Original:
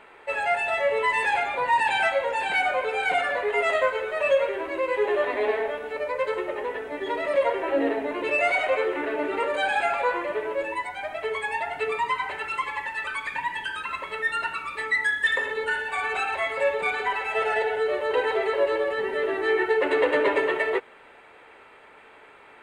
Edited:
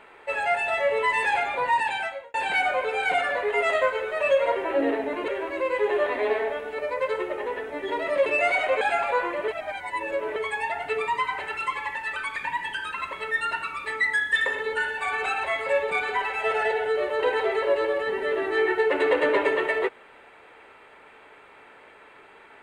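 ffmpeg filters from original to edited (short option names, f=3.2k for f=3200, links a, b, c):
-filter_complex "[0:a]asplit=8[a][b][c][d][e][f][g][h];[a]atrim=end=2.34,asetpts=PTS-STARTPTS,afade=t=out:st=1.66:d=0.68[i];[b]atrim=start=2.34:end=4.462,asetpts=PTS-STARTPTS,afade=t=in:d=0.004:c=hsin[j];[c]atrim=start=7.438:end=8.262[k];[d]atrim=start=4.458:end=7.442[l];[e]atrim=start=8.258:end=8.812[m];[f]atrim=start=9.718:end=10.392[n];[g]atrim=start=10.388:end=11.272,asetpts=PTS-STARTPTS,areverse[o];[h]atrim=start=11.268[p];[i][j]concat=n=2:v=0:a=1[q];[q][k]acrossfade=d=0.004:c1=hsin:c2=hsin[r];[r][l]acrossfade=d=0.004:c1=hsin:c2=hsin[s];[s][m]acrossfade=d=0.004:c1=hsin:c2=hsin[t];[t][n]acrossfade=d=0.004:c1=hsin:c2=hsin[u];[u][o]acrossfade=d=0.004:c1=hsin:c2=hsin[v];[v][p]acrossfade=d=0.004:c1=hsin:c2=hsin"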